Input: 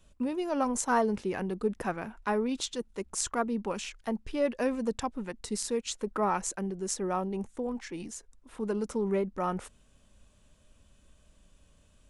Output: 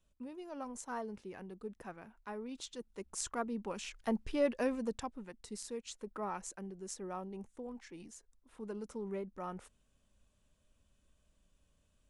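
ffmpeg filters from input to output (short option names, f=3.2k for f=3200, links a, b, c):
-af "volume=-1dB,afade=t=in:st=2.36:d=0.87:silence=0.421697,afade=t=in:st=3.77:d=0.37:silence=0.473151,afade=t=out:st=4.14:d=1.12:silence=0.298538"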